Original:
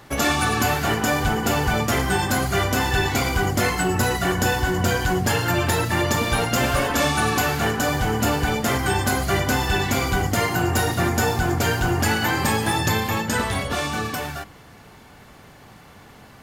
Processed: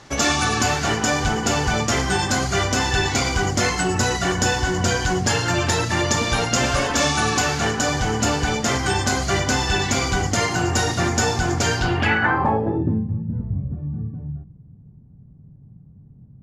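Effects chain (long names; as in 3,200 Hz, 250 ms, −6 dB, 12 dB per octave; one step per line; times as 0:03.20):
low-pass filter sweep 6,300 Hz → 150 Hz, 0:11.74–0:13.12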